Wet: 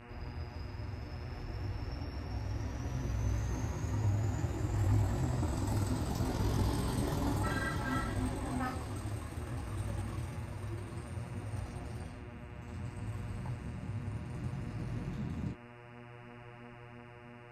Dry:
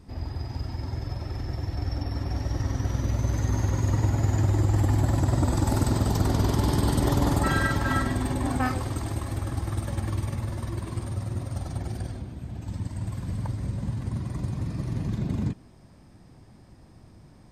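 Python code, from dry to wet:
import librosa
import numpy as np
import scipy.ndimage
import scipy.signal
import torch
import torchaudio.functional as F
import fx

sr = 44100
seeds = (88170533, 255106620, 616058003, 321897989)

y = fx.dmg_buzz(x, sr, base_hz=120.0, harmonics=24, level_db=-41.0, tilt_db=-4, odd_only=False)
y = fx.detune_double(y, sr, cents=21)
y = F.gain(torch.from_numpy(y), -6.5).numpy()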